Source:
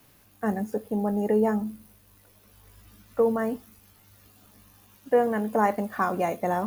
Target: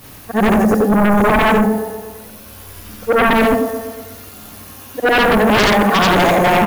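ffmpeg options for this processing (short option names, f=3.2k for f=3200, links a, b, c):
-af "afftfilt=real='re':imag='-im':win_size=8192:overlap=0.75,aecho=1:1:120|240|360|480|600|720:0.224|0.13|0.0753|0.0437|0.0253|0.0147,aeval=exprs='0.168*sin(PI/2*5.01*val(0)/0.168)':c=same,volume=6.5dB"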